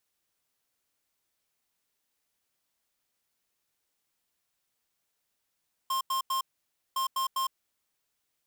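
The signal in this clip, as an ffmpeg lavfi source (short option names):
-f lavfi -i "aevalsrc='0.0355*(2*lt(mod(1060*t,1),0.5)-1)*clip(min(mod(mod(t,1.06),0.2),0.11-mod(mod(t,1.06),0.2))/0.005,0,1)*lt(mod(t,1.06),0.6)':d=2.12:s=44100"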